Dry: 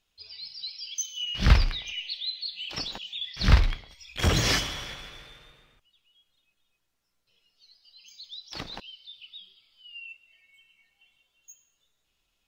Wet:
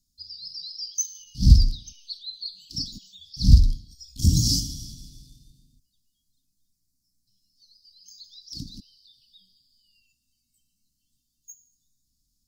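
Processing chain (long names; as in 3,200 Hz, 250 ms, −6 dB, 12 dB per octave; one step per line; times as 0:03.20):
Chebyshev band-stop filter 270–4,700 Hz, order 4
level +6 dB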